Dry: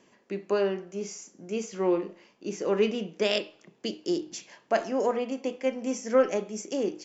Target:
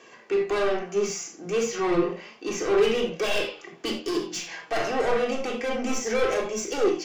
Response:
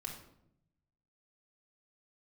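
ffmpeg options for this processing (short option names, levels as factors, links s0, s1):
-filter_complex "[0:a]asplit=2[s0][s1];[s1]highpass=f=720:p=1,volume=25.1,asoftclip=type=tanh:threshold=0.299[s2];[s0][s2]amix=inputs=2:normalize=0,lowpass=f=4200:p=1,volume=0.501,flanger=delay=1.8:depth=4.7:regen=44:speed=0.31:shape=sinusoidal[s3];[1:a]atrim=start_sample=2205,atrim=end_sample=4410[s4];[s3][s4]afir=irnorm=-1:irlink=0"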